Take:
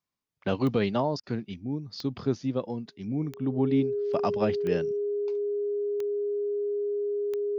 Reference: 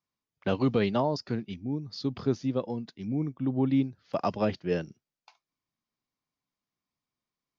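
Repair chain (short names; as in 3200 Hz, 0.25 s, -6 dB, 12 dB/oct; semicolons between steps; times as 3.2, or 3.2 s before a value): de-click; notch 410 Hz, Q 30; interpolate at 1.2, 32 ms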